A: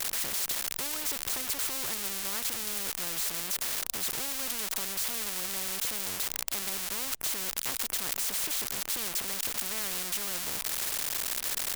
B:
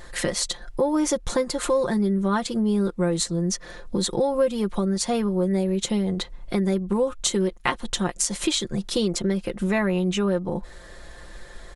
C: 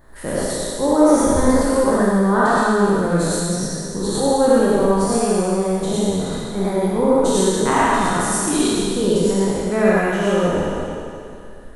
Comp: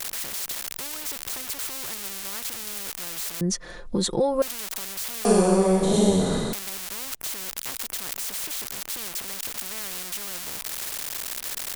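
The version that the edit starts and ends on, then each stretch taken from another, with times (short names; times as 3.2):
A
3.41–4.42 from B
5.25–6.53 from C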